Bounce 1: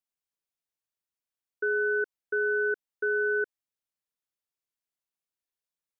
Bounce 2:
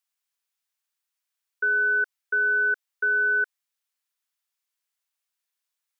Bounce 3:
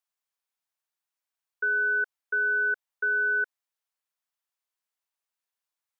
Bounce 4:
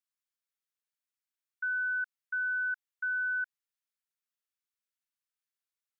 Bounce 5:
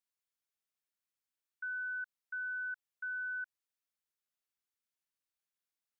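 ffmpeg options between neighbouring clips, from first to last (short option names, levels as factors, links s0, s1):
-af "highpass=1000,volume=2.51"
-af "equalizer=f=770:w=0.73:g=7.5,volume=0.473"
-af "highpass=f=1200:w=0.5412,highpass=f=1200:w=1.3066,volume=0.531"
-af "alimiter=level_in=3.16:limit=0.0631:level=0:latency=1,volume=0.316,volume=0.841"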